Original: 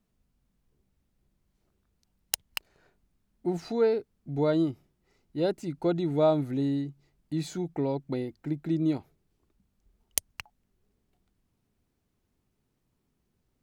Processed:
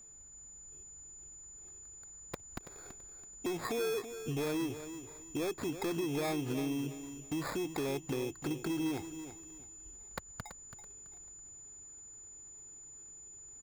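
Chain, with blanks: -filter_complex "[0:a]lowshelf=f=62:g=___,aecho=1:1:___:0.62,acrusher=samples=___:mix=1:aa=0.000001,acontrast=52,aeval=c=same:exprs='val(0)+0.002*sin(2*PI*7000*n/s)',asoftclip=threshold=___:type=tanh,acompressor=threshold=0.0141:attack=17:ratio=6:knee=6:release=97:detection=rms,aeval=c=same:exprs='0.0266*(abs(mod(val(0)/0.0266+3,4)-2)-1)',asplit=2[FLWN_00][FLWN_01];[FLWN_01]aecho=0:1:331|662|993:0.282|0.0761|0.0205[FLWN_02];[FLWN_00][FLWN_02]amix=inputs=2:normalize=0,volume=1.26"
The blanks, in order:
-5, 2.5, 15, 0.119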